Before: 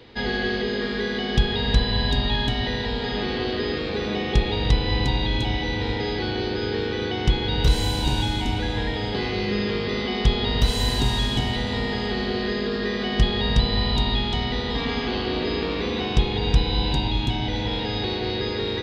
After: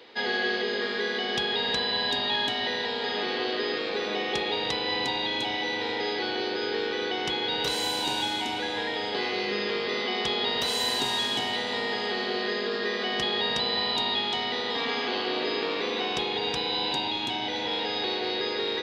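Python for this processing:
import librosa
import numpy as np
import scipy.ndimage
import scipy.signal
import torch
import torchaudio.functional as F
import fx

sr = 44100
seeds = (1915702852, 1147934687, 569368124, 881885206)

y = scipy.signal.sosfilt(scipy.signal.butter(2, 420.0, 'highpass', fs=sr, output='sos'), x)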